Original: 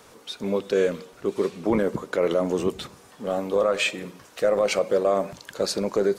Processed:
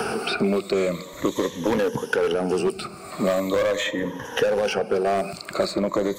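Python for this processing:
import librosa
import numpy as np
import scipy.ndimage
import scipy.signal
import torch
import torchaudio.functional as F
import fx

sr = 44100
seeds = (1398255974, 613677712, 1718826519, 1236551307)

y = fx.spec_ripple(x, sr, per_octave=1.1, drift_hz=-0.41, depth_db=15)
y = np.clip(10.0 ** (17.0 / 20.0) * y, -1.0, 1.0) / 10.0 ** (17.0 / 20.0)
y = fx.band_squash(y, sr, depth_pct=100)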